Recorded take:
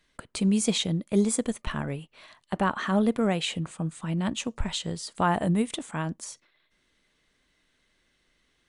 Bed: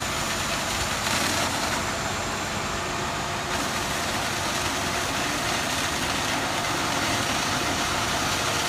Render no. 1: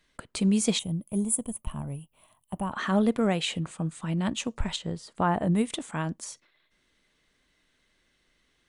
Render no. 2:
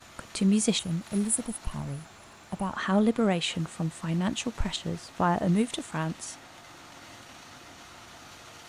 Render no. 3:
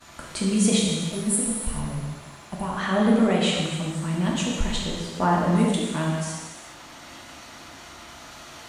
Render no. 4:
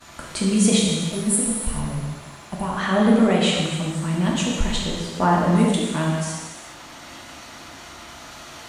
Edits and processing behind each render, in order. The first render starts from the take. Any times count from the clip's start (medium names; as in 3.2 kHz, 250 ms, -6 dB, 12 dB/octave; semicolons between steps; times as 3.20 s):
0.79–2.72 s: FFT filter 130 Hz 0 dB, 450 Hz -12 dB, 640 Hz -7 dB, 1 kHz -6 dB, 1.7 kHz -22 dB, 3 kHz -10 dB, 4.6 kHz -26 dB, 11 kHz +12 dB; 4.76–5.52 s: treble shelf 2.5 kHz -11.5 dB
add bed -23 dB
gated-style reverb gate 470 ms falling, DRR -3.5 dB
trim +3 dB